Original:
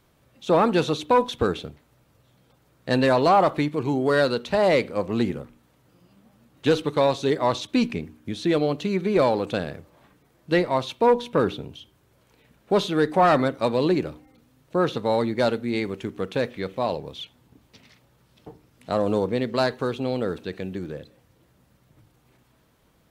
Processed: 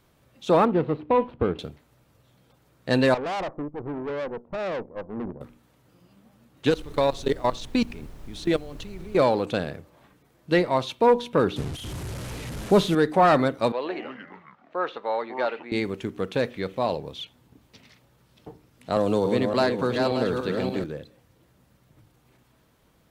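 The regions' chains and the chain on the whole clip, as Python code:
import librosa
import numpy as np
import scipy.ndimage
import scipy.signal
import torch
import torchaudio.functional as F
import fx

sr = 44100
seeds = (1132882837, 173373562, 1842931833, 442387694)

y = fx.chain(x, sr, fx.median_filter(points=25),
    fx.air_absorb(metres=430.0), at=(0.65, 1.59))
y = fx.chain(y, sr, fx.cheby2_lowpass(hz=5400.0, order=4, stop_db=80),
    fx.tube_stage(drive_db=27.0, bias=0.8),
    fx.upward_expand(threshold_db=-39.0, expansion=1.5), at=(3.14, 5.41))
y = fx.level_steps(y, sr, step_db=20, at=(6.69, 9.16), fade=0.02)
y = fx.dmg_noise_colour(y, sr, seeds[0], colour='brown', level_db=-40.0, at=(6.69, 9.16), fade=0.02)
y = fx.high_shelf(y, sr, hz=8300.0, db=5.0, at=(6.69, 9.16), fade=0.02)
y = fx.chain(y, sr, fx.delta_mod(bps=64000, step_db=-33.0),
    fx.low_shelf(hz=210.0, db=11.0), at=(11.56, 12.95))
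y = fx.chain(y, sr, fx.echo_pitch(ms=124, semitones=-6, count=2, db_per_echo=-6.0),
    fx.bandpass_edges(low_hz=660.0, high_hz=2300.0), at=(13.72, 15.72))
y = fx.chain(y, sr, fx.reverse_delay_fb(ms=289, feedback_pct=46, wet_db=-4.5),
    fx.band_squash(depth_pct=40), at=(18.96, 20.84))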